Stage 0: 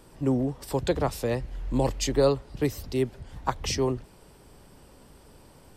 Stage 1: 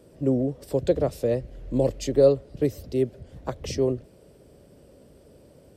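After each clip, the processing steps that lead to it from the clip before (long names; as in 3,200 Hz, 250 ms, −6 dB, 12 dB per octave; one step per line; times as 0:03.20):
high-pass filter 60 Hz
low shelf with overshoot 720 Hz +6.5 dB, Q 3
level −6 dB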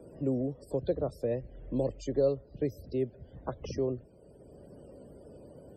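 spectral peaks only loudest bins 64
multiband upward and downward compressor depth 40%
level −7.5 dB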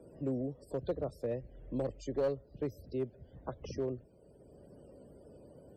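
asymmetric clip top −22.5 dBFS
level −4.5 dB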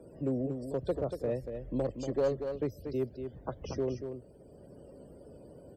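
single-tap delay 236 ms −7.5 dB
level +3 dB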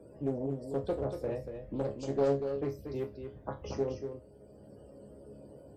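resonators tuned to a chord C#2 fifth, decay 0.26 s
highs frequency-modulated by the lows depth 0.31 ms
level +9 dB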